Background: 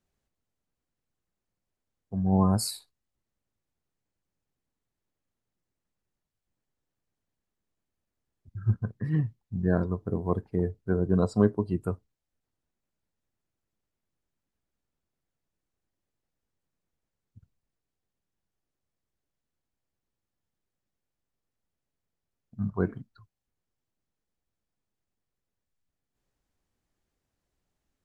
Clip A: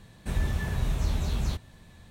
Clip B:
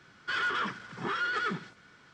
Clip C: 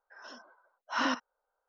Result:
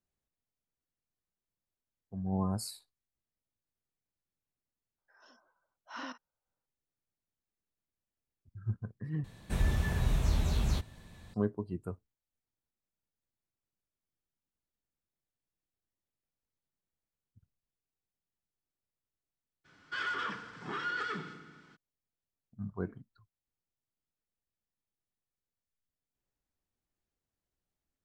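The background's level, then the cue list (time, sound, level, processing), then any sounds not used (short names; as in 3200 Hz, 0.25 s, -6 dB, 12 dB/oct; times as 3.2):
background -9.5 dB
4.98 add C -13 dB
9.24 replace with A -1.5 dB
19.64 add B -6 dB, fades 0.02 s + FDN reverb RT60 1.4 s, low-frequency decay 1.35×, high-frequency decay 0.85×, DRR 7 dB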